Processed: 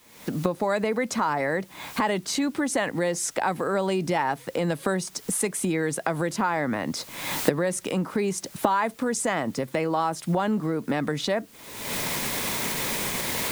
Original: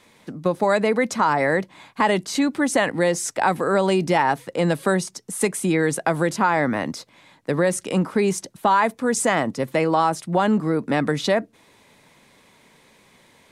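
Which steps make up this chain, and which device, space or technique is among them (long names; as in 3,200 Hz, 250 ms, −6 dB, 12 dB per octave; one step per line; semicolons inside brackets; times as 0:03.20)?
cheap recorder with automatic gain (white noise bed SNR 32 dB; camcorder AGC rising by 51 dB per second)
level −6 dB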